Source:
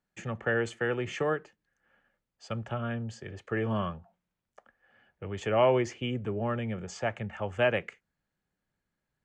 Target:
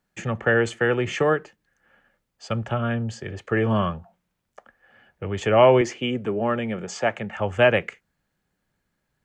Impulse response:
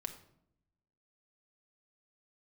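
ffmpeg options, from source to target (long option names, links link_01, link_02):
-filter_complex "[0:a]asettb=1/sr,asplit=3[link_01][link_02][link_03];[link_01]atrim=end=5.814[link_04];[link_02]atrim=start=5.81:end=7.37,asetpts=PTS-STARTPTS,afade=type=in:duration=0.004:curve=qsin,afade=type=out:start_time=1.556:duration=0.004:curve=qsin,highpass=180[link_05];[link_03]atrim=start=7.366[link_06];[link_04][link_05]acrossfade=duration=0.004:curve1=hsin:curve2=qsin[link_07];[link_07][link_06]acrossfade=duration=0.004:curve1=qsin:curve2=hsin,volume=8.5dB"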